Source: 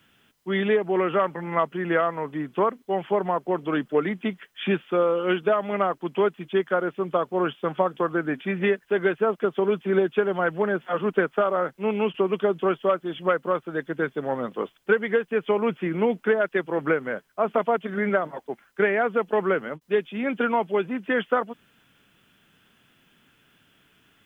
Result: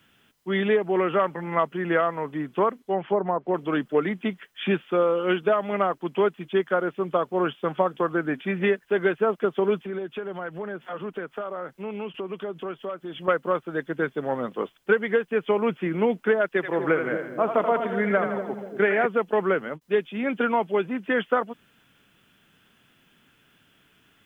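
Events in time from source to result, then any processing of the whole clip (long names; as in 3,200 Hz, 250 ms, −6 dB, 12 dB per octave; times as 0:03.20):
0:02.79–0:03.54: treble cut that deepens with the level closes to 1,100 Hz, closed at −19 dBFS
0:09.84–0:13.28: downward compressor 2.5 to 1, threshold −33 dBFS
0:16.49–0:19.06: echo with a time of its own for lows and highs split 540 Hz, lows 243 ms, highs 82 ms, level −6.5 dB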